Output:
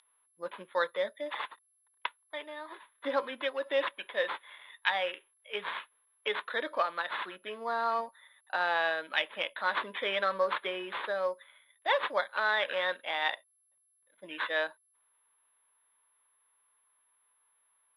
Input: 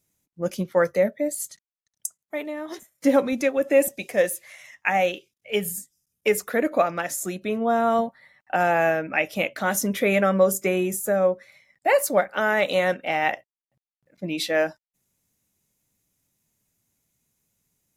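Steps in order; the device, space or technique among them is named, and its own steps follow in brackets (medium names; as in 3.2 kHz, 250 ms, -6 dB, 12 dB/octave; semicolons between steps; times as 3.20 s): toy sound module (decimation joined by straight lines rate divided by 8×; class-D stage that switches slowly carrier 11 kHz; cabinet simulation 690–4800 Hz, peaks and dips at 730 Hz -8 dB, 1 kHz +9 dB, 1.7 kHz +4 dB, 3.6 kHz +10 dB); trim -5 dB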